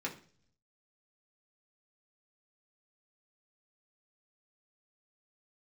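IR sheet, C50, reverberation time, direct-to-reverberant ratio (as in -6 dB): 12.5 dB, 0.45 s, -3.0 dB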